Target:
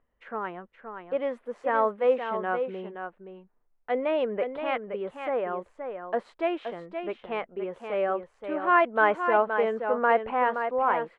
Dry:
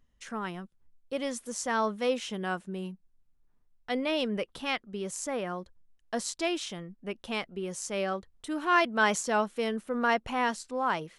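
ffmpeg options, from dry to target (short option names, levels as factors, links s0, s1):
-filter_complex "[0:a]firequalizer=gain_entry='entry(180,0);entry(460,14);entry(2200,6);entry(5800,-27)':delay=0.05:min_phase=1,asplit=2[s0][s1];[s1]aecho=0:1:522:0.422[s2];[s0][s2]amix=inputs=2:normalize=0,volume=0.422"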